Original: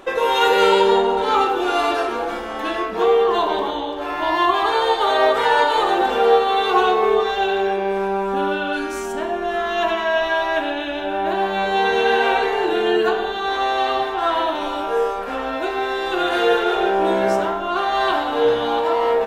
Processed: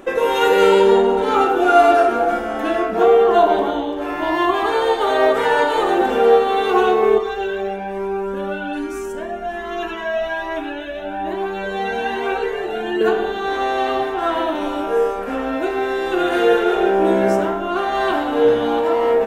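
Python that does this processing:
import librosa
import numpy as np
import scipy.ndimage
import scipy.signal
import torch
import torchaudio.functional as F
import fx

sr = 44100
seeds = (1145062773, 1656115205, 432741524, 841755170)

y = fx.small_body(x, sr, hz=(700.0, 1400.0), ring_ms=45, db=11, at=(1.36, 3.82))
y = fx.comb_cascade(y, sr, direction='rising', hz=1.2, at=(7.18, 13.01))
y = fx.graphic_eq(y, sr, hz=(250, 1000, 4000), db=(5, -5, -8))
y = y * 10.0 ** (2.5 / 20.0)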